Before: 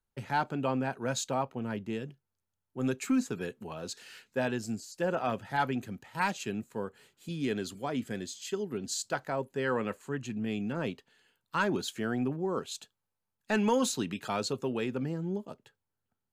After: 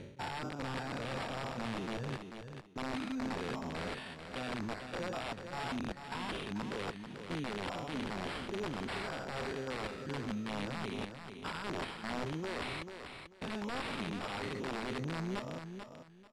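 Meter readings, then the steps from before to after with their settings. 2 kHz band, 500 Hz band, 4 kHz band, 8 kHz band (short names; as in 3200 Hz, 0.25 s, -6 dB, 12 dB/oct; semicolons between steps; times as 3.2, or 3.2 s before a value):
-4.0 dB, -7.5 dB, -2.0 dB, -13.5 dB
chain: stepped spectrum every 0.2 s; reverb removal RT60 0.65 s; dynamic EQ 1800 Hz, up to -4 dB, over -56 dBFS, Q 4.8; reverse; compressor 12:1, threshold -45 dBFS, peak gain reduction 18 dB; reverse; sample-and-hold 7×; wrapped overs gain 41.5 dB; air absorption 77 m; on a send: feedback echo 0.44 s, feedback 22%, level -8 dB; on the sum: downsampling 32000 Hz; gain +10 dB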